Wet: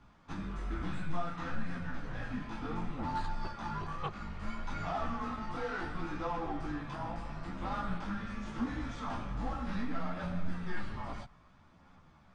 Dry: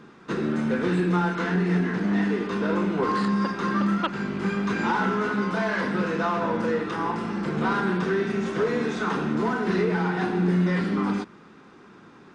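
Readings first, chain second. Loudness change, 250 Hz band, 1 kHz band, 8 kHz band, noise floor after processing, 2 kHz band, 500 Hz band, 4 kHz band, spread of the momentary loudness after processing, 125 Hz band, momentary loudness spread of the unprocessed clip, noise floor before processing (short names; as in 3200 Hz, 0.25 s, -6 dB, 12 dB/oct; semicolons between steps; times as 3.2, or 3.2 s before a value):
-14.0 dB, -16.0 dB, -11.0 dB, n/a, -61 dBFS, -15.0 dB, -18.0 dB, -12.5 dB, 5 LU, -12.5 dB, 5 LU, -50 dBFS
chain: frequency shift -180 Hz; chorus voices 2, 0.63 Hz, delay 16 ms, depth 4.9 ms; gain -8.5 dB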